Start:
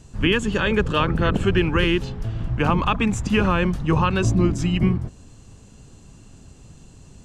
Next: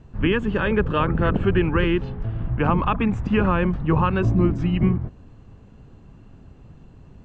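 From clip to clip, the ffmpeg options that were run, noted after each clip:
-af "lowpass=2000"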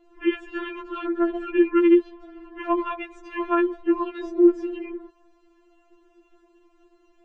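-af "lowshelf=f=230:t=q:w=1.5:g=-13,afftfilt=real='re*4*eq(mod(b,16),0)':imag='im*4*eq(mod(b,16),0)':win_size=2048:overlap=0.75,volume=0.75"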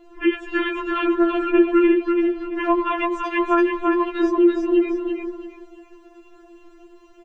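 -filter_complex "[0:a]acompressor=threshold=0.0398:ratio=2,asplit=2[s0][s1];[s1]aecho=0:1:336|672|1008|1344:0.631|0.17|0.046|0.0124[s2];[s0][s2]amix=inputs=2:normalize=0,volume=2.82"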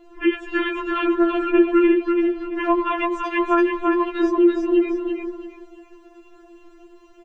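-af anull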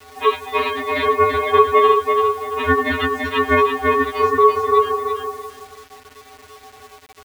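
-af "aeval=exprs='val(0)*sin(2*PI*770*n/s)':c=same,acrusher=bits=7:mix=0:aa=0.000001,volume=1.88"

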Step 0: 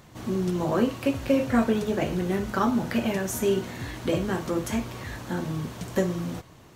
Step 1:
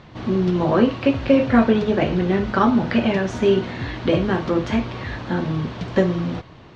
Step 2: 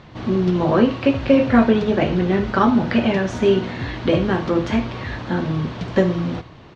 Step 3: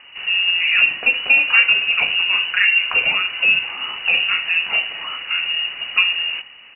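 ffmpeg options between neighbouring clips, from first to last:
-af "lowpass=f=4400:w=0.5412,lowpass=f=4400:w=1.3066,volume=2.24"
-af "aecho=1:1:77:0.133,volume=1.12"
-af "lowpass=f=2600:t=q:w=0.5098,lowpass=f=2600:t=q:w=0.6013,lowpass=f=2600:t=q:w=0.9,lowpass=f=2600:t=q:w=2.563,afreqshift=-3000"

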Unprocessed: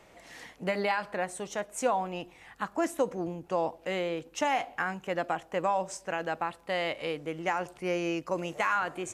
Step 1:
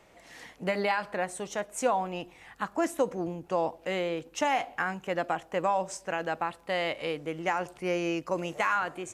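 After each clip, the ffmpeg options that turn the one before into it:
-af "dynaudnorm=f=170:g=5:m=1.41,volume=0.794"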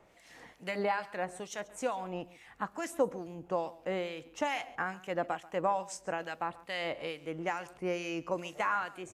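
-filter_complex "[0:a]acrossover=split=1600[s0][s1];[s0]aeval=exprs='val(0)*(1-0.7/2+0.7/2*cos(2*PI*2.3*n/s))':c=same[s2];[s1]aeval=exprs='val(0)*(1-0.7/2-0.7/2*cos(2*PI*2.3*n/s))':c=same[s3];[s2][s3]amix=inputs=2:normalize=0,aecho=1:1:137:0.1,volume=0.841"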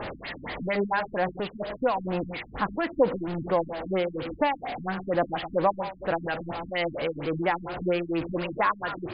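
-af "aeval=exprs='val(0)+0.5*0.0178*sgn(val(0))':c=same,afftfilt=real='re*lt(b*sr/1024,270*pow(5100/270,0.5+0.5*sin(2*PI*4.3*pts/sr)))':imag='im*lt(b*sr/1024,270*pow(5100/270,0.5+0.5*sin(2*PI*4.3*pts/sr)))':win_size=1024:overlap=0.75,volume=2.11"

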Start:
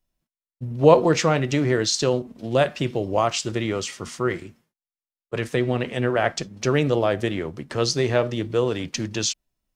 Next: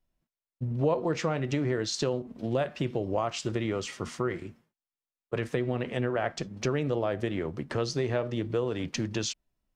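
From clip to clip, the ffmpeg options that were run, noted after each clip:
-af "highshelf=f=3400:g=-9,acompressor=threshold=0.0447:ratio=3"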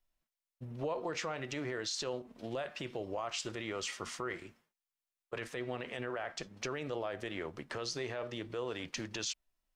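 -af "equalizer=f=130:w=0.31:g=-14,alimiter=level_in=1.5:limit=0.0631:level=0:latency=1:release=31,volume=0.668"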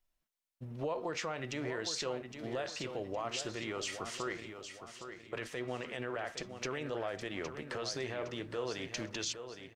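-af "aecho=1:1:813|1626|2439|3252:0.355|0.142|0.0568|0.0227"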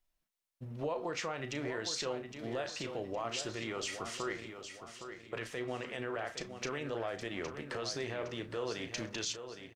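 -filter_complex "[0:a]asplit=2[s0][s1];[s1]adelay=35,volume=0.251[s2];[s0][s2]amix=inputs=2:normalize=0"

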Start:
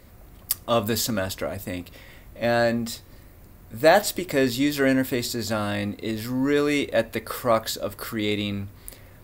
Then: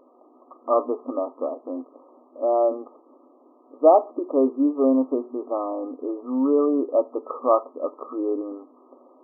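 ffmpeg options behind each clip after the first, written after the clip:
-af "afftfilt=real='re*between(b*sr/4096,240,1300)':imag='im*between(b*sr/4096,240,1300)':win_size=4096:overlap=0.75,volume=1.33"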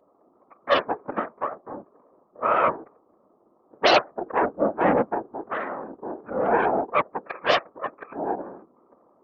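-af "aeval=exprs='0.631*(cos(1*acos(clip(val(0)/0.631,-1,1)))-cos(1*PI/2))+0.316*(cos(8*acos(clip(val(0)/0.631,-1,1)))-cos(8*PI/2))':c=same,highpass=f=270:w=0.5412,highpass=f=270:w=1.3066,afftfilt=real='hypot(re,im)*cos(2*PI*random(0))':imag='hypot(re,im)*sin(2*PI*random(1))':win_size=512:overlap=0.75"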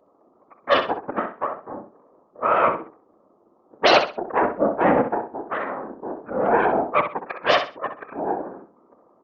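-filter_complex "[0:a]asplit=2[s0][s1];[s1]aecho=0:1:64|128|192:0.355|0.0887|0.0222[s2];[s0][s2]amix=inputs=2:normalize=0,aresample=16000,aresample=44100,volume=1.26"

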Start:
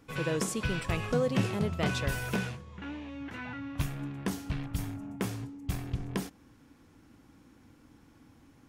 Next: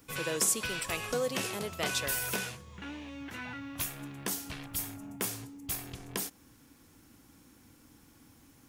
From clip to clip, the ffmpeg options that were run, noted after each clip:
-filter_complex "[0:a]acrossover=split=310[s0][s1];[s0]acompressor=threshold=0.00794:ratio=6[s2];[s1]aemphasis=mode=production:type=75kf[s3];[s2][s3]amix=inputs=2:normalize=0,volume=0.794"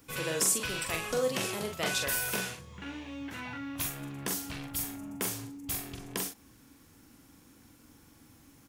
-filter_complex "[0:a]asplit=2[s0][s1];[s1]adelay=43,volume=0.562[s2];[s0][s2]amix=inputs=2:normalize=0"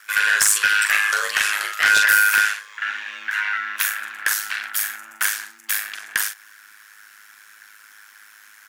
-af "highpass=f=1600:t=q:w=6.6,aeval=exprs='0.251*sin(PI/2*1.78*val(0)/0.251)':c=same,aeval=exprs='val(0)*sin(2*PI*52*n/s)':c=same,volume=1.78"

